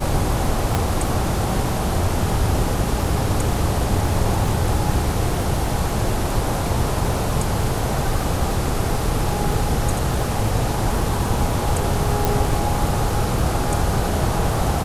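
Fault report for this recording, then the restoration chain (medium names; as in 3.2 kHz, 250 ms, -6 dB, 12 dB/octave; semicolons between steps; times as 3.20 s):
crackle 33 per s -26 dBFS
0.75 s: pop -6 dBFS
12.25 s: pop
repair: de-click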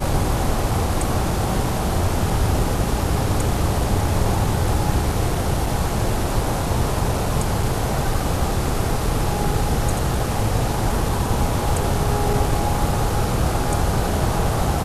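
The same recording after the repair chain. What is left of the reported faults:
0.75 s: pop
12.25 s: pop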